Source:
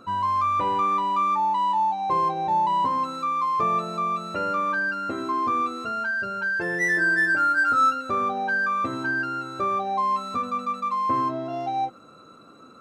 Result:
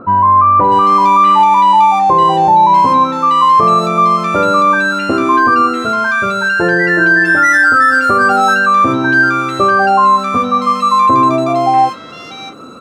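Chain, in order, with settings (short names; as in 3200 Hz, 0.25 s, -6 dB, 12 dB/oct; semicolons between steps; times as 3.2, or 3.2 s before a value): bands offset in time lows, highs 0.64 s, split 1600 Hz; maximiser +18 dB; gain -1 dB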